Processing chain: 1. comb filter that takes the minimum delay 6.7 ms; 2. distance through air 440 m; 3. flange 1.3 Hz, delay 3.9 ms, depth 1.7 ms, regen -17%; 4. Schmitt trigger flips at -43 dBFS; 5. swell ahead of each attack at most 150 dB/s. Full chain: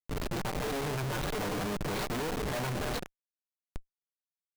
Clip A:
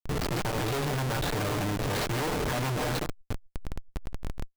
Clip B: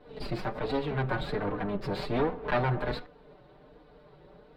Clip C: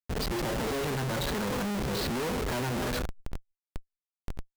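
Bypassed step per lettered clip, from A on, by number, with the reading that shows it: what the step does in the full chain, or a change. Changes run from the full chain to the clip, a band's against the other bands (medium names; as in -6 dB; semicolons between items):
3, crest factor change -2.5 dB; 4, crest factor change +7.5 dB; 1, 250 Hz band +1.5 dB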